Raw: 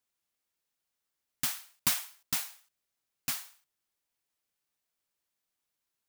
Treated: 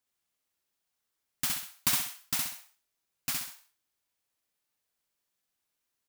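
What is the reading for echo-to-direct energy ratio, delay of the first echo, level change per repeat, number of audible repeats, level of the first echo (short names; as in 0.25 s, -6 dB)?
-2.5 dB, 65 ms, -9.0 dB, 3, -3.0 dB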